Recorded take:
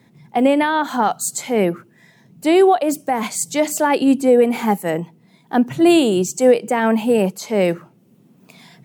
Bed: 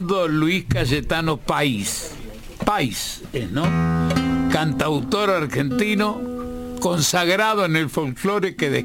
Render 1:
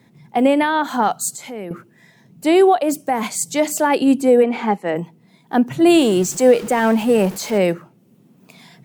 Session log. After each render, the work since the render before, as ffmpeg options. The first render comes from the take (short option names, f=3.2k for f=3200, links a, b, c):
-filter_complex "[0:a]asettb=1/sr,asplit=3[a][b][c];[a]atrim=end=1.314[d];[b]atrim=start=1.31:end=1.71,asetpts=PTS-STARTPTS,afade=t=in:d=0.004:c=qsin,afade=t=out:st=0.396:d=0.004:c=qsin,acompressor=threshold=-33dB:ratio=2.5:attack=3.2:release=140:knee=1:detection=peak[e];[c]atrim=start=1.706[f];[d][e]acrossfade=d=0.004:c1=hsin:c2=qsin[g];[g][f]acrossfade=d=0.004:c1=qsin:c2=hsin,asplit=3[h][i][j];[h]afade=t=out:st=4.42:d=0.02[k];[i]highpass=210,lowpass=3.8k,afade=t=in:st=4.42:d=0.02,afade=t=out:st=4.95:d=0.02[l];[j]afade=t=in:st=4.95:d=0.02[m];[k][l][m]amix=inputs=3:normalize=0,asettb=1/sr,asplit=3[n][o][p];[n]atrim=end=5.944[q];[o]atrim=start=5.94:end=7.58,asetpts=PTS-STARTPTS,afade=t=in:d=0.004:c=qsin,afade=t=out:st=1.636:d=0.004:c=qsin,aeval=exprs='val(0)+0.5*0.0376*sgn(val(0))':c=same[r];[p]atrim=start=7.576[s];[q][r]acrossfade=d=0.004:c1=hsin:c2=qsin[t];[t][s]acrossfade=d=0.004:c1=qsin:c2=hsin"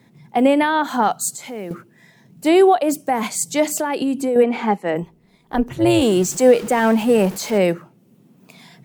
-filter_complex "[0:a]asplit=3[a][b][c];[a]afade=t=out:st=1.3:d=0.02[d];[b]acrusher=bits=7:mode=log:mix=0:aa=0.000001,afade=t=in:st=1.3:d=0.02,afade=t=out:st=2.47:d=0.02[e];[c]afade=t=in:st=2.47:d=0.02[f];[d][e][f]amix=inputs=3:normalize=0,asettb=1/sr,asplit=3[g][h][i];[g]atrim=end=3.704[j];[h]atrim=start=3.7:end=4.36,asetpts=PTS-STARTPTS,afade=t=in:d=0.004:c=qsin,afade=t=out:st=0.656:d=0.004:c=qsin,acompressor=threshold=-17dB:ratio=6:attack=3.2:release=140:knee=1:detection=peak[k];[i]atrim=start=4.356[l];[j][k]acrossfade=d=0.004:c1=hsin:c2=qsin[m];[m][l]acrossfade=d=0.004:c1=qsin:c2=hsin,asplit=3[n][o][p];[n]afade=t=out:st=5.02:d=0.02[q];[o]tremolo=f=220:d=0.75,afade=t=in:st=5.02:d=0.02,afade=t=out:st=6.01:d=0.02[r];[p]afade=t=in:st=6.01:d=0.02[s];[q][r][s]amix=inputs=3:normalize=0"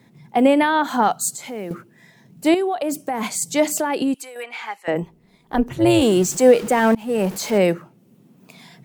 -filter_complex "[0:a]asettb=1/sr,asplit=3[a][b][c];[a]atrim=end=2.544[d];[b]atrim=start=2.54:end=3.42,asetpts=PTS-STARTPTS,afade=t=in:d=0.004:c=qsin,afade=t=out:st=0.876:d=0.004:c=qsin,acompressor=threshold=-19dB:ratio=6:attack=3.2:release=140:knee=1:detection=peak[e];[c]atrim=start=3.416[f];[d][e]acrossfade=d=0.004:c1=hsin:c2=qsin[g];[g][f]acrossfade=d=0.004:c1=qsin:c2=hsin,asettb=1/sr,asplit=3[h][i][j];[h]atrim=end=4.144[k];[i]atrim=start=4.14:end=4.88,asetpts=PTS-STARTPTS,afade=t=in:d=0.004:c=qsin,afade=t=out:st=0.736:d=0.004:c=qsin,highpass=1.5k[l];[j]atrim=start=4.876[m];[k][l]acrossfade=d=0.004:c1=hsin:c2=qsin[n];[n][m]acrossfade=d=0.004:c1=qsin:c2=hsin,asplit=2[o][p];[o]atrim=end=6.95,asetpts=PTS-STARTPTS,afade=t=out:st=6.946:d=0.004:c=hsin:silence=0.0630957[q];[p]atrim=start=6.95,asetpts=PTS-STARTPTS,afade=t=in:d=0.44:silence=0.0630957[r];[q][r]concat=n=2:v=0:a=1"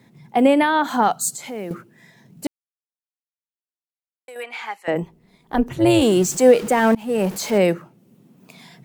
-filter_complex "[0:a]asplit=3[a][b][c];[a]atrim=end=2.47,asetpts=PTS-STARTPTS,afade=t=out:st=2.466:d=0.004:c=hsin[d];[b]atrim=start=2.47:end=4.28,asetpts=PTS-STARTPTS,volume=0[e];[c]atrim=start=4.28,asetpts=PTS-STARTPTS,afade=t=in:d=0.004:c=hsin[f];[d][e][f]concat=n=3:v=0:a=1"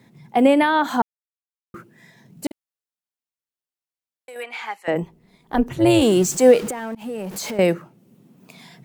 -filter_complex "[0:a]asettb=1/sr,asplit=3[a][b][c];[a]atrim=end=2.464[d];[b]atrim=start=2.46:end=4.44,asetpts=PTS-STARTPTS,afade=t=in:d=0.004:c=qsin,afade=t=out:st=1.976:d=0.004:c=qsin,asplit=2[e][f];[f]adelay=49,volume=-13dB[g];[e][g]amix=inputs=2:normalize=0,atrim=end_sample=87318[h];[c]atrim=start=4.436[i];[d][h]acrossfade=d=0.004:c1=hsin:c2=qsin[j];[j][i]acrossfade=d=0.004:c1=qsin:c2=hsin,asettb=1/sr,asplit=3[k][l][m];[k]atrim=end=6.704[n];[l]atrim=start=6.7:end=7.59,asetpts=PTS-STARTPTS,afade=t=in:d=0.004:c=qsin,afade=t=out:st=0.886:d=0.004:c=qsin,acompressor=threshold=-26dB:ratio=6:attack=3.2:release=140:knee=1:detection=peak[o];[m]atrim=start=7.586[p];[n][o]acrossfade=d=0.004:c1=hsin:c2=qsin[q];[q][p]acrossfade=d=0.004:c1=qsin:c2=hsin,asplit=3[r][s][t];[r]atrim=end=1.02,asetpts=PTS-STARTPTS,afade=t=out:st=1.016:d=0.004:c=hsin[u];[s]atrim=start=1.02:end=1.74,asetpts=PTS-STARTPTS,volume=0[v];[t]atrim=start=1.74,asetpts=PTS-STARTPTS,afade=t=in:d=0.004:c=hsin[w];[u][v][w]concat=n=3:v=0:a=1"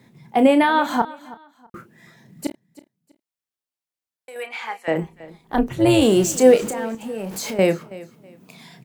-filter_complex "[0:a]asplit=2[a][b];[b]adelay=31,volume=-10dB[c];[a][c]amix=inputs=2:normalize=0,aecho=1:1:324|648:0.112|0.0292"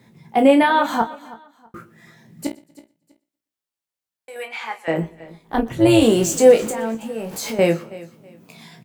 -filter_complex "[0:a]asplit=2[a][b];[b]adelay=18,volume=-6dB[c];[a][c]amix=inputs=2:normalize=0,aecho=1:1:120|240|360:0.0708|0.0276|0.0108"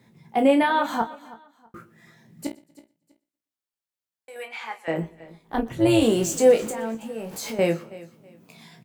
-af "volume=-5dB"